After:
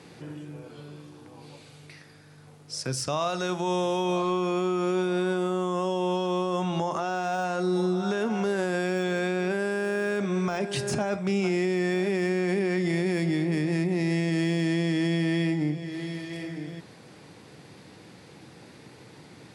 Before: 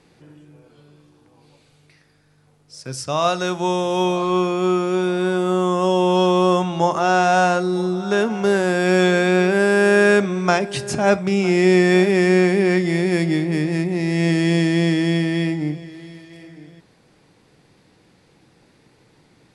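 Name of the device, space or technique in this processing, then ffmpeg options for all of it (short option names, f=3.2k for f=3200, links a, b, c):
podcast mastering chain: -af "highpass=f=80:w=0.5412,highpass=f=80:w=1.3066,deesser=0.55,acompressor=threshold=-38dB:ratio=2,alimiter=level_in=1dB:limit=-24dB:level=0:latency=1:release=19,volume=-1dB,volume=7dB" -ar 44100 -c:a libmp3lame -b:a 112k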